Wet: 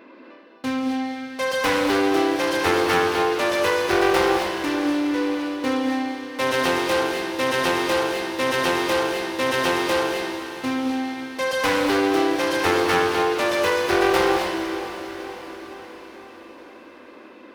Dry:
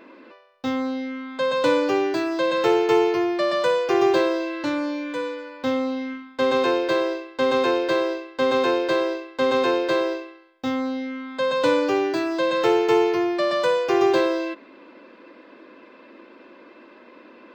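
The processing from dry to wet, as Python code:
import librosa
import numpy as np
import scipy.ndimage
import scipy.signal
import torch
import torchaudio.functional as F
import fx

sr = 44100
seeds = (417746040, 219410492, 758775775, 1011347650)

p1 = fx.self_delay(x, sr, depth_ms=0.71)
p2 = scipy.signal.sosfilt(scipy.signal.butter(2, 41.0, 'highpass', fs=sr, output='sos'), p1)
p3 = fx.peak_eq(p2, sr, hz=7400.0, db=-5.5, octaves=0.37)
p4 = p3 + fx.echo_diffused(p3, sr, ms=467, feedback_pct=58, wet_db=-11, dry=0)
y = fx.rev_gated(p4, sr, seeds[0], gate_ms=290, shape='rising', drr_db=3.0)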